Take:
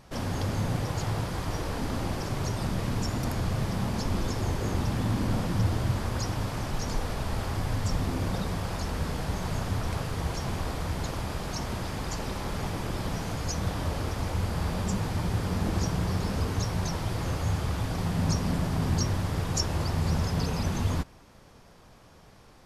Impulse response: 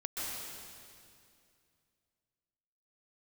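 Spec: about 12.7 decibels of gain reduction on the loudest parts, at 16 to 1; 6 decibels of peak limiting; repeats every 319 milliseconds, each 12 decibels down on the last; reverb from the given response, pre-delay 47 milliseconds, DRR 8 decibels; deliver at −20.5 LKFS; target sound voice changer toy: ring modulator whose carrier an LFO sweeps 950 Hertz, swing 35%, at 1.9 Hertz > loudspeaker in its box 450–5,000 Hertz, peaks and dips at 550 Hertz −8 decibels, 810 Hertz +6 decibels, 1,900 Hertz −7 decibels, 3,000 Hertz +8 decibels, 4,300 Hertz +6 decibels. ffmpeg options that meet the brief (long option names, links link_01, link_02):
-filter_complex "[0:a]acompressor=threshold=-35dB:ratio=16,alimiter=level_in=8.5dB:limit=-24dB:level=0:latency=1,volume=-8.5dB,aecho=1:1:319|638|957:0.251|0.0628|0.0157,asplit=2[link_01][link_02];[1:a]atrim=start_sample=2205,adelay=47[link_03];[link_02][link_03]afir=irnorm=-1:irlink=0,volume=-11.5dB[link_04];[link_01][link_04]amix=inputs=2:normalize=0,aeval=exprs='val(0)*sin(2*PI*950*n/s+950*0.35/1.9*sin(2*PI*1.9*n/s))':channel_layout=same,highpass=450,equalizer=frequency=550:width_type=q:width=4:gain=-8,equalizer=frequency=810:width_type=q:width=4:gain=6,equalizer=frequency=1900:width_type=q:width=4:gain=-7,equalizer=frequency=3000:width_type=q:width=4:gain=8,equalizer=frequency=4300:width_type=q:width=4:gain=6,lowpass=frequency=5000:width=0.5412,lowpass=frequency=5000:width=1.3066,volume=21.5dB"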